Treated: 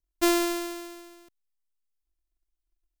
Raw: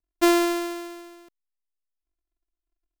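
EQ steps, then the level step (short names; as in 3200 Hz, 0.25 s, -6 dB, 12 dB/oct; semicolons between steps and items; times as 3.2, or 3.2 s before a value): low shelf 130 Hz +11 dB; high shelf 3100 Hz +7.5 dB; -6.0 dB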